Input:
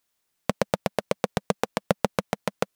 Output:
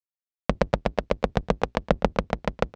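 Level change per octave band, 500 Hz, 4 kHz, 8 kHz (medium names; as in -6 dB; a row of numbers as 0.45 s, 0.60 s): +1.5 dB, -2.0 dB, -10.0 dB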